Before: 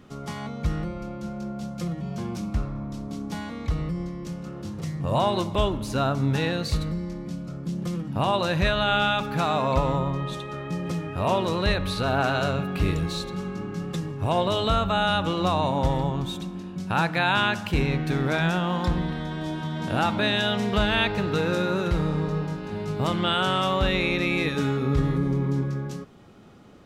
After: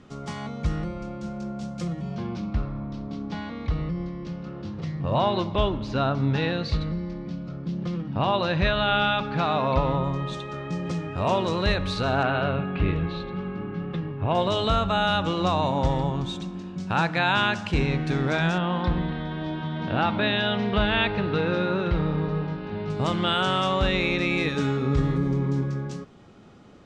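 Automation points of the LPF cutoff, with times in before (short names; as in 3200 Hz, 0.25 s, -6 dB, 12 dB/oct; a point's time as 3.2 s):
LPF 24 dB/oct
8400 Hz
from 2.15 s 4700 Hz
from 10.04 s 7600 Hz
from 12.23 s 3200 Hz
from 14.35 s 7600 Hz
from 18.58 s 4000 Hz
from 22.9 s 8200 Hz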